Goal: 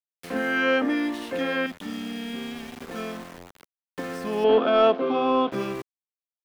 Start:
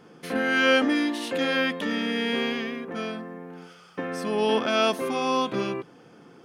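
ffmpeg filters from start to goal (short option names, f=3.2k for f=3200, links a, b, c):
-filter_complex "[0:a]asettb=1/sr,asplit=3[a][b][c];[a]atrim=end=1.664[d];[b]atrim=start=1.66:end=2.82,asetpts=PTS-STARTPTS,afade=t=in:d=0.004:c=qsin,afade=t=out:st=1.156:d=0.004:c=qsin,equalizer=f=500:t=o:w=1:g=-12,equalizer=f=1k:t=o:w=1:g=-6,equalizer=f=2k:t=o:w=1:g=-10[e];[c]atrim=start=2.816[f];[d][e]acrossfade=d=0.004:c1=hsin:c2=qsin[g];[g][f]acrossfade=d=0.004:c1=qsin:c2=hsin,aeval=exprs='val(0)*gte(abs(val(0)),0.0178)':c=same,acrossover=split=360|1100|2800[h][i][j][k];[k]acompressor=threshold=-45dB:ratio=6[l];[h][i][j][l]amix=inputs=4:normalize=0,asettb=1/sr,asplit=3[m][n][o];[m]atrim=end=4.444[p];[n]atrim=start=4.44:end=5.52,asetpts=PTS-STARTPTS,afade=t=in:d=0.004:c=qsin,afade=t=out:st=1.076:d=0.004:c=qsin,highpass=160,equalizer=f=280:t=q:w=4:g=8,equalizer=f=450:t=q:w=4:g=8,equalizer=f=690:t=q:w=4:g=8,equalizer=f=1.3k:t=q:w=4:g=6,equalizer=f=1.9k:t=q:w=4:g=-7,equalizer=f=3.3k:t=q:w=4:g=5,lowpass=f=3.9k:w=0.5412,lowpass=f=3.9k:w=1.3066[q];[o]atrim=start=5.516[r];[p][q]acrossfade=d=0.004:c1=hsin:c2=qsin[s];[s][r]acrossfade=d=0.004:c1=qsin:c2=hsin,acontrast=69,volume=-7.5dB"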